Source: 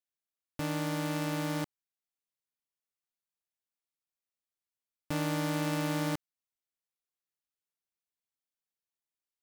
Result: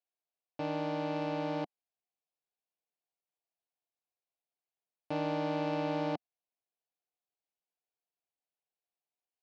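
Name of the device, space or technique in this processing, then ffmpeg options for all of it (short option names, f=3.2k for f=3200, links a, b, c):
kitchen radio: -af "highpass=200,equalizer=f=230:t=q:w=4:g=-8,equalizer=f=470:t=q:w=4:g=3,equalizer=f=720:t=q:w=4:g=9,equalizer=f=1.3k:t=q:w=4:g=-8,equalizer=f=1.9k:t=q:w=4:g=-9,equalizer=f=3.4k:t=q:w=4:g=-6,lowpass=f=3.9k:w=0.5412,lowpass=f=3.9k:w=1.3066"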